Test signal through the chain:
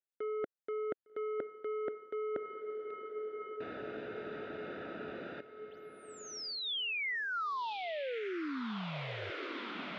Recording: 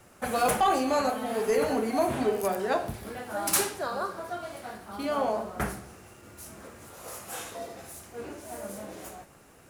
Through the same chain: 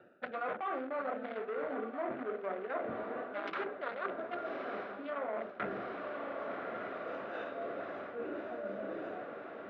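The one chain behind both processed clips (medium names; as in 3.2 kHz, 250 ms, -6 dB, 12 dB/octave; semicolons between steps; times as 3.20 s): local Wiener filter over 41 samples; in parallel at -4 dB: wavefolder -23.5 dBFS; on the sum: low-pass that closes with the level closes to 1.5 kHz, closed at -22 dBFS; cabinet simulation 420–3600 Hz, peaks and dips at 440 Hz -3 dB, 820 Hz -8 dB, 1.4 kHz +7 dB, 2.1 kHz +4 dB, 3.5 kHz +5 dB; echo that smears into a reverb 1161 ms, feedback 61%, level -14 dB; reverse; compression 5:1, threshold -45 dBFS; reverse; trim +8 dB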